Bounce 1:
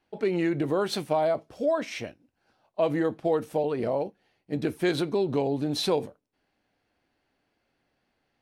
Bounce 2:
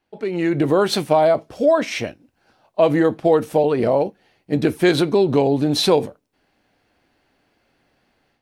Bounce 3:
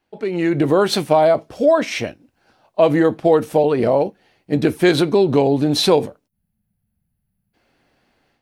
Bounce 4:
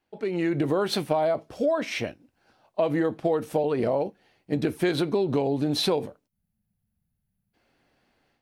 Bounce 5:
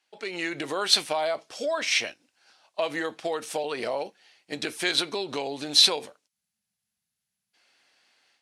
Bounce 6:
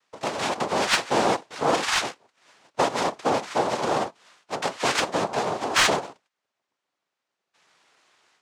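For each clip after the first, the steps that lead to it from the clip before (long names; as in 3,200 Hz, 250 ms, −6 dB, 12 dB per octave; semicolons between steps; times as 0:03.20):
automatic gain control gain up to 10.5 dB
gain on a spectral selection 0:06.28–0:07.54, 220–9,900 Hz −28 dB; level +1.5 dB
dynamic equaliser 7,000 Hz, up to −4 dB, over −39 dBFS, Q 1.3; downward compressor 3 to 1, threshold −16 dBFS, peak gain reduction 6 dB; level −5.5 dB
meter weighting curve ITU-R 468
cochlear-implant simulation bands 2; mid-hump overdrive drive 17 dB, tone 1,200 Hz, clips at −1 dBFS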